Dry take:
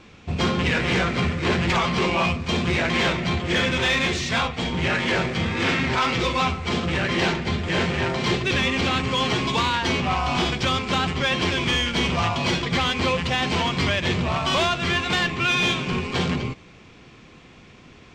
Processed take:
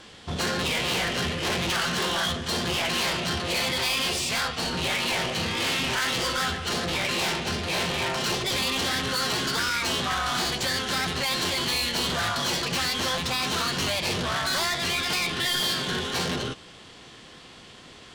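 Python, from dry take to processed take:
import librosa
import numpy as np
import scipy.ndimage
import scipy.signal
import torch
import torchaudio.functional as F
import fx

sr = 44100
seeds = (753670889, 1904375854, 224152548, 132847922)

y = fx.low_shelf(x, sr, hz=400.0, db=-8.5)
y = 10.0 ** (-27.5 / 20.0) * np.tanh(y / 10.0 ** (-27.5 / 20.0))
y = fx.formant_shift(y, sr, semitones=5)
y = F.gain(torch.from_numpy(y), 4.0).numpy()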